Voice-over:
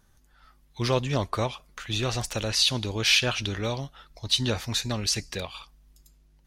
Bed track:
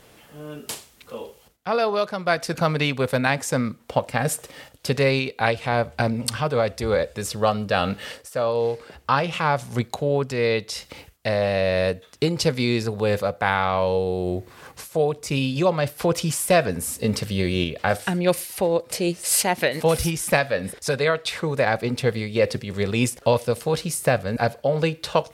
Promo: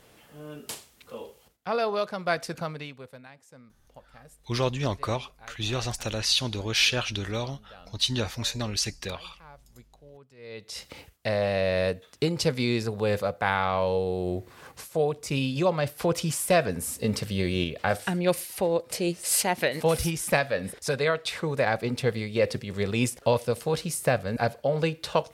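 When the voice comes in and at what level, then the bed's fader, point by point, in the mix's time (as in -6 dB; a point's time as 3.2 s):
3.70 s, -1.5 dB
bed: 2.39 s -5 dB
3.32 s -29 dB
10.35 s -29 dB
10.79 s -4 dB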